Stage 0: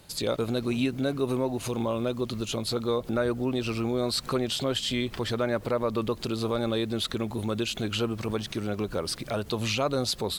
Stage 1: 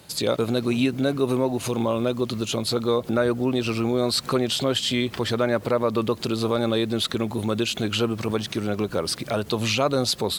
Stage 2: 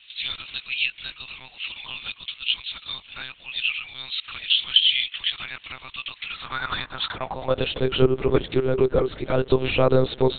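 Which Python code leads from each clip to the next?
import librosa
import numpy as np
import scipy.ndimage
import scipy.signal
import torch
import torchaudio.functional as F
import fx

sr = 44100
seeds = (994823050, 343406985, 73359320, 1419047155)

y1 = scipy.signal.sosfilt(scipy.signal.butter(2, 87.0, 'highpass', fs=sr, output='sos'), x)
y1 = y1 * librosa.db_to_amplitude(5.0)
y2 = fx.filter_sweep_highpass(y1, sr, from_hz=2800.0, to_hz=360.0, start_s=6.03, end_s=7.97, q=3.5)
y2 = fx.lpc_monotone(y2, sr, seeds[0], pitch_hz=130.0, order=10)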